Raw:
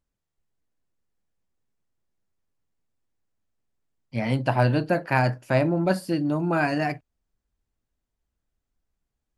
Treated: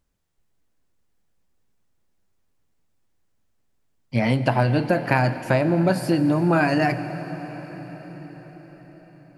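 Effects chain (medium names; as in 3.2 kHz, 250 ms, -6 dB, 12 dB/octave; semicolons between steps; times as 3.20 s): compression, threshold -24 dBFS, peak gain reduction 9 dB; reverberation RT60 6.3 s, pre-delay 80 ms, DRR 11 dB; trim +8 dB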